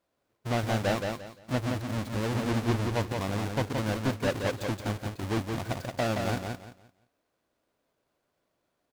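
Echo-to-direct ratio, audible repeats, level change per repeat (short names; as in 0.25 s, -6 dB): -4.0 dB, 3, -11.5 dB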